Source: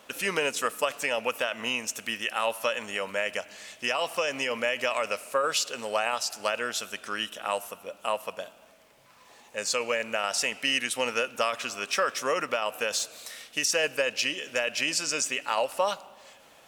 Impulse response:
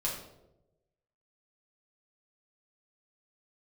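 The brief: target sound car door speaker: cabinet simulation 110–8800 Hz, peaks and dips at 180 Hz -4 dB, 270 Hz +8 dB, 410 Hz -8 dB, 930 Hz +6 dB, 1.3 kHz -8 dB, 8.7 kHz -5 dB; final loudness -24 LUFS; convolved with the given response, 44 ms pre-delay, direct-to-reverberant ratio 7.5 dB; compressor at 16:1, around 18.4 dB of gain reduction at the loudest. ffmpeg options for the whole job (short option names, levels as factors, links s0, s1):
-filter_complex "[0:a]acompressor=threshold=0.01:ratio=16,asplit=2[s0][s1];[1:a]atrim=start_sample=2205,adelay=44[s2];[s1][s2]afir=irnorm=-1:irlink=0,volume=0.251[s3];[s0][s3]amix=inputs=2:normalize=0,highpass=110,equalizer=f=180:t=q:w=4:g=-4,equalizer=f=270:t=q:w=4:g=8,equalizer=f=410:t=q:w=4:g=-8,equalizer=f=930:t=q:w=4:g=6,equalizer=f=1300:t=q:w=4:g=-8,equalizer=f=8700:t=q:w=4:g=-5,lowpass=f=8800:w=0.5412,lowpass=f=8800:w=1.3066,volume=10"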